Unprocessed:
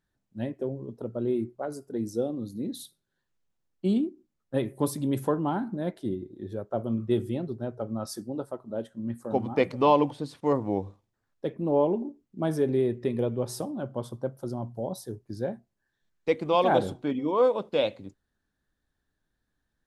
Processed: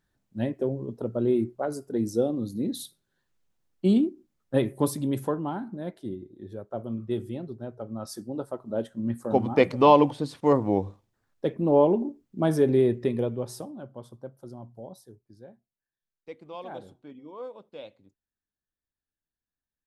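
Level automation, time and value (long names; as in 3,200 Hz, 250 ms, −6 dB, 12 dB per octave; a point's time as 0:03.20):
0:04.62 +4 dB
0:05.57 −4 dB
0:07.84 −4 dB
0:08.80 +4 dB
0:12.93 +4 dB
0:13.94 −9 dB
0:14.81 −9 dB
0:15.41 −17 dB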